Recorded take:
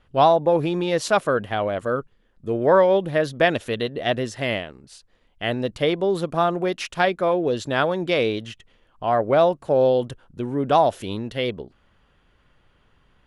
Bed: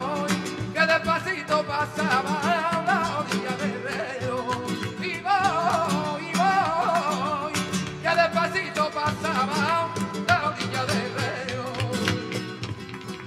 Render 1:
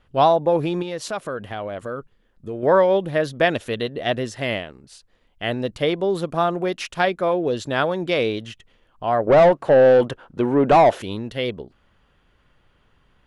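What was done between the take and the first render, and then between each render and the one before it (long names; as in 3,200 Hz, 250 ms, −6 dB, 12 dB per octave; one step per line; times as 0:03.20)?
0:00.82–0:02.63: downward compressor 2 to 1, threshold −30 dBFS
0:09.27–0:11.02: mid-hump overdrive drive 22 dB, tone 1,200 Hz, clips at −4.5 dBFS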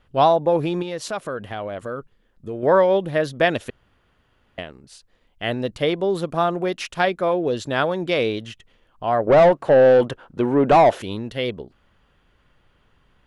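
0:03.70–0:04.58: fill with room tone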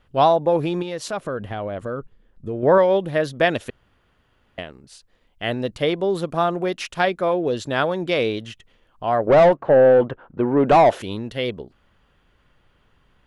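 0:01.13–0:02.78: spectral tilt −1.5 dB per octave
0:09.56–0:10.57: low-pass filter 1,900 Hz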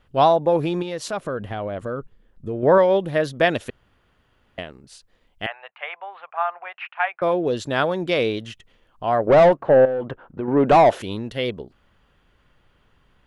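0:05.46–0:07.22: elliptic band-pass filter 760–2,600 Hz, stop band 50 dB
0:09.85–0:10.48: downward compressor 4 to 1, threshold −24 dBFS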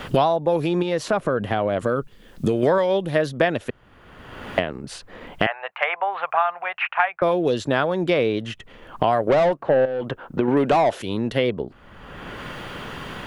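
multiband upward and downward compressor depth 100%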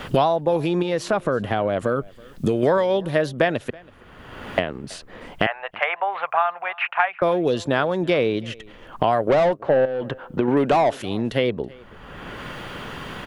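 single-tap delay 327 ms −24 dB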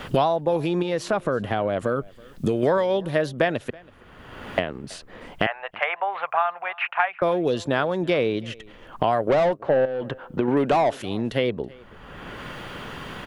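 level −2 dB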